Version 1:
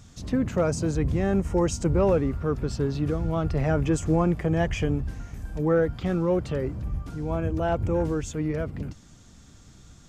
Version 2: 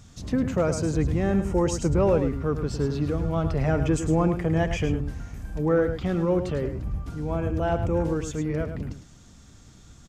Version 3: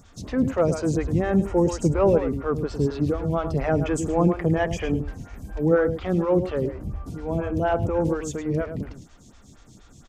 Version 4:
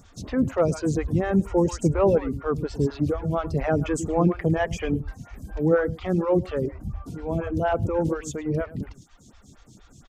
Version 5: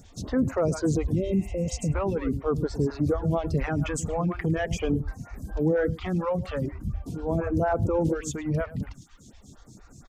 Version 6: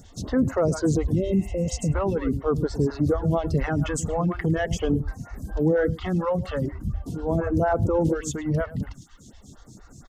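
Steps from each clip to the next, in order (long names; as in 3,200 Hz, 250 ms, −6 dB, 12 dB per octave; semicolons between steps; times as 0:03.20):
single-tap delay 106 ms −9 dB
phaser with staggered stages 4.2 Hz; level +4.5 dB
reverb reduction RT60 0.65 s
healed spectral selection 0:01.21–0:01.90, 680–2,800 Hz before; brickwall limiter −17.5 dBFS, peak gain reduction 8 dB; auto-filter notch sine 0.43 Hz 340–3,300 Hz; level +1.5 dB
Butterworth band-reject 2,400 Hz, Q 7.4; level +2.5 dB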